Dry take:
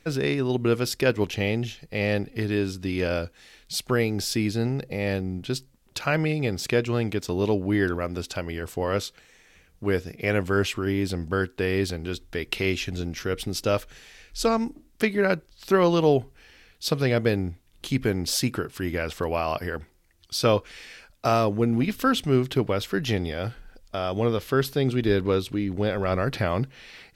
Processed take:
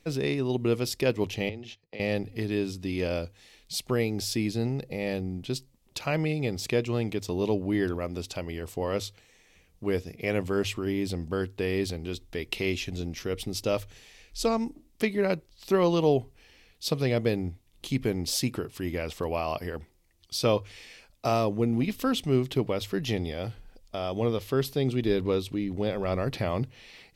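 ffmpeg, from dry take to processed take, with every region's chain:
ffmpeg -i in.wav -filter_complex "[0:a]asettb=1/sr,asplit=3[link_01][link_02][link_03];[link_01]atrim=end=1.494[link_04];[link_02]atrim=start=1.49:end=2,asetpts=PTS-STARTPTS,afade=type=in:duration=0.004:curve=qsin,afade=type=out:start_time=0.506:duration=0.004:curve=qsin,agate=range=-20dB:threshold=-41dB:ratio=16:release=100:detection=peak,acompressor=threshold=-31dB:ratio=4:attack=3.2:release=140:knee=1:detection=peak,acrossover=split=210 6400:gain=0.2 1 0.158[link_05][link_06][link_07];[link_05][link_06][link_07]amix=inputs=3:normalize=0[link_08];[link_03]atrim=start=1.996[link_09];[link_04][link_08]acrossfade=duration=0.004:curve1=hsin:curve2=qsin[link_10];[link_10][link_09]acrossfade=duration=0.004:curve1=qsin:curve2=hsin,equalizer=frequency=1500:width_type=o:width=0.47:gain=-9,bandreject=frequency=50:width_type=h:width=6,bandreject=frequency=100:width_type=h:width=6,volume=-3dB" out.wav

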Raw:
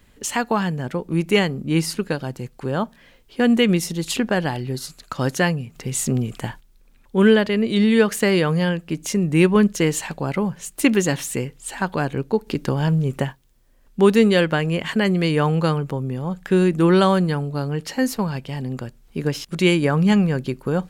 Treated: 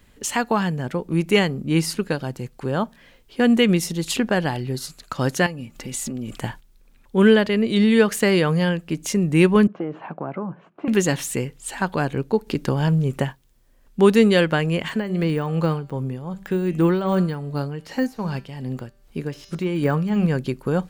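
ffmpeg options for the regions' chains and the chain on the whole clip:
ffmpeg -i in.wav -filter_complex "[0:a]asettb=1/sr,asplit=3[link_01][link_02][link_03];[link_01]atrim=end=5.464[link_04];[link_02]atrim=start=5.46:end=6.36,asetpts=PTS-STARTPTS,afade=type=in:duration=0.004:curve=qsin,afade=type=out:start_time=0.896:duration=0.004:curve=qsin,acompressor=threshold=-25dB:ratio=12:attack=3.2:release=140:knee=1:detection=peak,aecho=1:1:3.5:0.53,atrim=end_sample=39690[link_05];[link_03]atrim=start=6.356[link_06];[link_04][link_05]acrossfade=duration=0.004:curve1=hsin:curve2=qsin[link_07];[link_07][link_06]acrossfade=duration=0.004:curve1=qsin:curve2=hsin,asettb=1/sr,asplit=3[link_08][link_09][link_10];[link_08]atrim=end=9.674[link_11];[link_09]atrim=start=9.67:end=10.88,asetpts=PTS-STARTPTS,afade=type=in:duration=0.004:curve=qsin,afade=type=out:start_time=1.206:duration=0.004:curve=qsin,acompressor=threshold=-22dB:ratio=5:attack=3.2:release=140:knee=1:detection=peak,aeval=exprs='(tanh(10*val(0)+0.5)-tanh(0.5))/10':channel_layout=same,highpass=frequency=140:width=0.5412,highpass=frequency=140:width=1.3066,equalizer=frequency=330:width_type=q:width=4:gain=5,equalizer=frequency=690:width_type=q:width=4:gain=6,equalizer=frequency=1100:width_type=q:width=4:gain=4,equalizer=frequency=1900:width_type=q:width=4:gain=-10,lowpass=frequency=2000:width=0.5412,lowpass=frequency=2000:width=1.3066[link_12];[link_10]atrim=start=10.876[link_13];[link_11][link_12]acrossfade=duration=0.004:curve1=hsin:curve2=qsin[link_14];[link_14][link_13]acrossfade=duration=0.004:curve1=qsin:curve2=hsin,asettb=1/sr,asplit=3[link_15][link_16][link_17];[link_15]atrim=end=14.884[link_18];[link_16]atrim=start=14.88:end=20.26,asetpts=PTS-STARTPTS,afade=type=in:duration=0.004:curve=qsin,afade=type=out:start_time=5.376:duration=0.004:curve=qsin,bandreject=frequency=195.9:width_type=h:width=4,bandreject=frequency=391.8:width_type=h:width=4,bandreject=frequency=587.7:width_type=h:width=4,bandreject=frequency=783.6:width_type=h:width=4,bandreject=frequency=979.5:width_type=h:width=4,bandreject=frequency=1175.4:width_type=h:width=4,bandreject=frequency=1371.3:width_type=h:width=4,bandreject=frequency=1567.2:width_type=h:width=4,bandreject=frequency=1763.1:width_type=h:width=4,bandreject=frequency=1959:width_type=h:width=4,bandreject=frequency=2154.9:width_type=h:width=4,bandreject=frequency=2350.8:width_type=h:width=4,bandreject=frequency=2546.7:width_type=h:width=4,bandreject=frequency=2742.6:width_type=h:width=4,bandreject=frequency=2938.5:width_type=h:width=4,bandreject=frequency=3134.4:width_type=h:width=4,bandreject=frequency=3330.3:width_type=h:width=4,bandreject=frequency=3526.2:width_type=h:width=4,bandreject=frequency=3722.1:width_type=h:width=4,bandreject=frequency=3918:width_type=h:width=4,bandreject=frequency=4113.9:width_type=h:width=4,bandreject=frequency=4309.8:width_type=h:width=4,bandreject=frequency=4505.7:width_type=h:width=4,bandreject=frequency=4701.6:width_type=h:width=4,bandreject=frequency=4897.5:width_type=h:width=4,bandreject=frequency=5093.4:width_type=h:width=4,bandreject=frequency=5289.3:width_type=h:width=4,bandreject=frequency=5485.2:width_type=h:width=4,bandreject=frequency=5681.1:width_type=h:width=4,bandreject=frequency=5877:width_type=h:width=4,bandreject=frequency=6072.9:width_type=h:width=4,bandreject=frequency=6268.8:width_type=h:width=4,bandreject=frequency=6464.7:width_type=h:width=4,bandreject=frequency=6660.6:width_type=h:width=4,bandreject=frequency=6856.5:width_type=h:width=4,deesser=0.9,tremolo=f=2.6:d=0.56[link_19];[link_17]atrim=start=20.256[link_20];[link_18][link_19]acrossfade=duration=0.004:curve1=hsin:curve2=qsin[link_21];[link_21][link_20]acrossfade=duration=0.004:curve1=qsin:curve2=hsin" out.wav

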